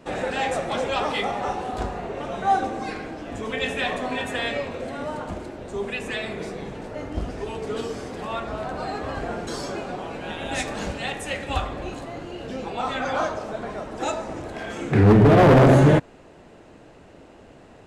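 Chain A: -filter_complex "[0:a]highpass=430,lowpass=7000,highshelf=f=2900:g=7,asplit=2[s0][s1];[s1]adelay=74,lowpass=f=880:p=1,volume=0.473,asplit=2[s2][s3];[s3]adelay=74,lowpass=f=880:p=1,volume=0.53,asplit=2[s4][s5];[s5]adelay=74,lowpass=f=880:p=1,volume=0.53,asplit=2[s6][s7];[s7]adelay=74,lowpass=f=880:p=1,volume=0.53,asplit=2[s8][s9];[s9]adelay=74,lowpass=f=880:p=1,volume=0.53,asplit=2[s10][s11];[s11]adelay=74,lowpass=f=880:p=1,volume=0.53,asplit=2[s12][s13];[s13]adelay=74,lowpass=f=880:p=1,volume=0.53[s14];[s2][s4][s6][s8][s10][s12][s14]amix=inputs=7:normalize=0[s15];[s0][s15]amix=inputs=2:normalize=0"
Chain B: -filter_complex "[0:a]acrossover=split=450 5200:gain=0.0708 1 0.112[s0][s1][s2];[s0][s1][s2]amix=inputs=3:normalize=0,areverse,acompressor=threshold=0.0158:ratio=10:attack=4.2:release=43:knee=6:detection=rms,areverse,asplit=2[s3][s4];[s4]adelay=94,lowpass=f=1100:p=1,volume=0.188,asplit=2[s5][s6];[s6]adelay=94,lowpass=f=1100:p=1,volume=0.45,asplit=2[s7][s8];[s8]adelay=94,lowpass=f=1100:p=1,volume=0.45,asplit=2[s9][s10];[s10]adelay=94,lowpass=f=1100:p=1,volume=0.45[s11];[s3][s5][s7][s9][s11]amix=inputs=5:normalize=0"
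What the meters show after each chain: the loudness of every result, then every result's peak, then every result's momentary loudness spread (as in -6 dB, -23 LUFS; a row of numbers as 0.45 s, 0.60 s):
-26.0 LUFS, -39.5 LUFS; -3.5 dBFS, -27.5 dBFS; 14 LU, 4 LU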